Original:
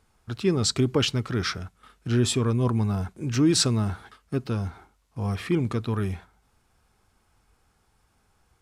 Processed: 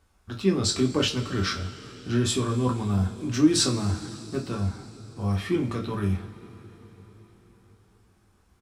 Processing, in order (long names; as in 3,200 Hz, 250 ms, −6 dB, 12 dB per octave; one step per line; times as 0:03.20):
double-tracking delay 20 ms −11 dB
coupled-rooms reverb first 0.26 s, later 4.8 s, from −22 dB, DRR 0 dB
level −3.5 dB